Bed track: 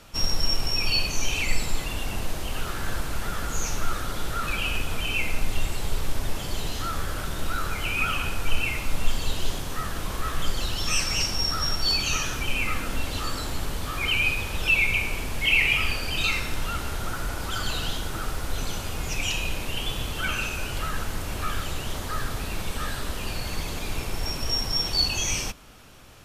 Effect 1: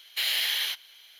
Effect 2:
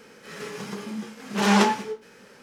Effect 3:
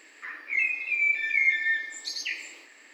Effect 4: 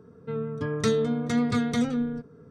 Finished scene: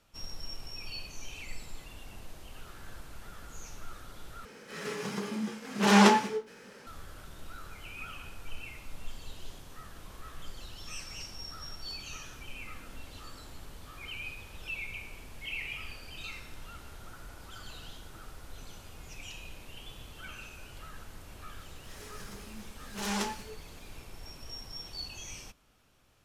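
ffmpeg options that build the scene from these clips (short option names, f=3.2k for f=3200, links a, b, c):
-filter_complex "[2:a]asplit=2[a][b];[0:a]volume=-17.5dB[c];[b]crystalizer=i=2.5:c=0[d];[c]asplit=2[e][f];[e]atrim=end=4.454[g];[a]atrim=end=2.42,asetpts=PTS-STARTPTS,volume=-1dB[h];[f]atrim=start=6.866[i];[d]atrim=end=2.42,asetpts=PTS-STARTPTS,volume=-15.5dB,afade=t=in:d=0.004:c=hsin,afade=t=out:st=2.416:d=0.004:c=hsin,adelay=21600[j];[g][h]acrossfade=d=0.004:c1=hsin:c2=hsin[k];[k][i]acrossfade=d=0.004:c1=hsin:c2=hsin[l];[l][j]amix=inputs=2:normalize=0"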